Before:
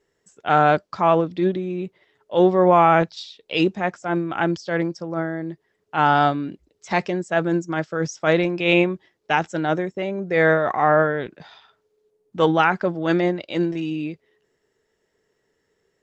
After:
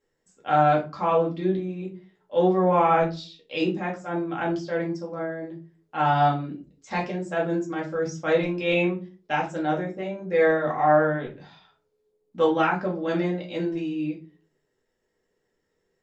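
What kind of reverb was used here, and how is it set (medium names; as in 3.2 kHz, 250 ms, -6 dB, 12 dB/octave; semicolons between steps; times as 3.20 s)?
simulated room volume 160 m³, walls furnished, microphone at 2.2 m; trim -10 dB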